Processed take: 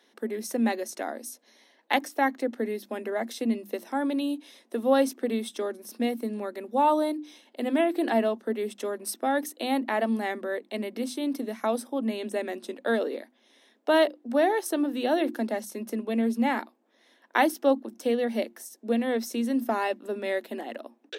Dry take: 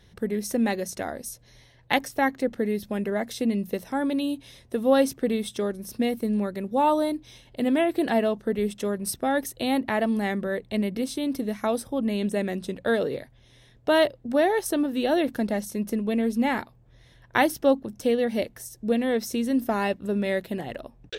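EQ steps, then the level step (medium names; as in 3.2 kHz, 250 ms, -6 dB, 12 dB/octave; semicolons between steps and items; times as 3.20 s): rippled Chebyshev high-pass 220 Hz, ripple 3 dB; hum notches 50/100/150/200/250/300/350 Hz; 0.0 dB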